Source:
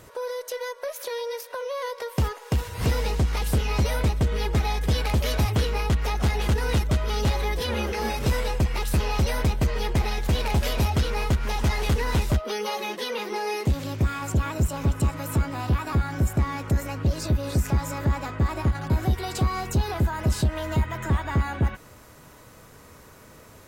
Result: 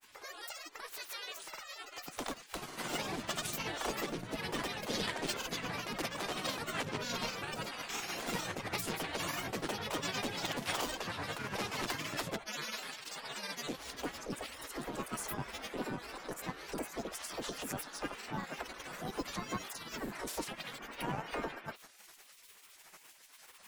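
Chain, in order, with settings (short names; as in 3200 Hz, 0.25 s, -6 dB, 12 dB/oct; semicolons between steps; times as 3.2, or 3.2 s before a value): tremolo 8.9 Hz, depth 49%; in parallel at +1 dB: compressor, threshold -31 dBFS, peak gain reduction 11.5 dB; on the sum: grains, pitch spread up and down by 7 st; spectral gate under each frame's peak -15 dB weak; gain -5 dB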